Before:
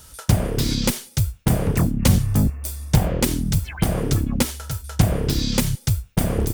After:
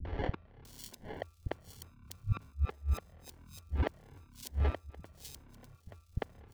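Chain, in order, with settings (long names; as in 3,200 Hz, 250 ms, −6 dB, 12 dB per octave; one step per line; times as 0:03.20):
parametric band 84 Hz +11 dB 0.31 octaves
downward compressor 16 to 1, threshold −24 dBFS, peak gain reduction 18 dB
gate with flip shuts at −23 dBFS, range −32 dB
decimation without filtering 35×
three-band delay without the direct sound lows, mids, highs 50/650 ms, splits 220/3,400 Hz
level +5 dB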